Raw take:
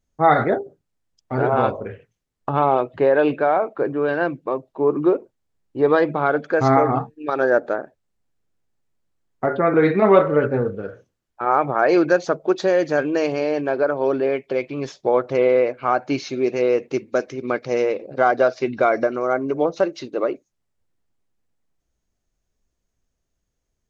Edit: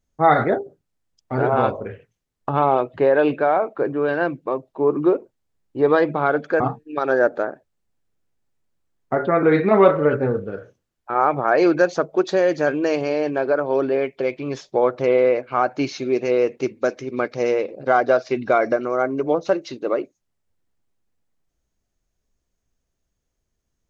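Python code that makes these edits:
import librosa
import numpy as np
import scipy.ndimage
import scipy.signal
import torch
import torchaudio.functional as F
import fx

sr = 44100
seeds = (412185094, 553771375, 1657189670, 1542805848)

y = fx.edit(x, sr, fx.cut(start_s=6.6, length_s=0.31), tone=tone)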